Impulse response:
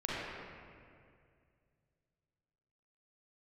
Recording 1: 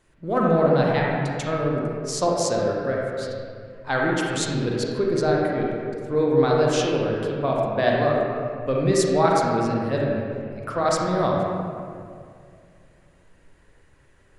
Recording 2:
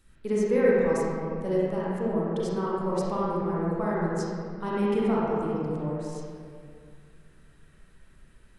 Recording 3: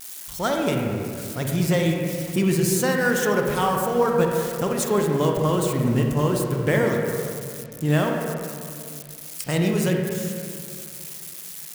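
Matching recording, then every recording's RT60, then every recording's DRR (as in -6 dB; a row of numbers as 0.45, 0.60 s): 2; 2.2, 2.2, 2.2 s; -3.5, -7.5, 1.0 dB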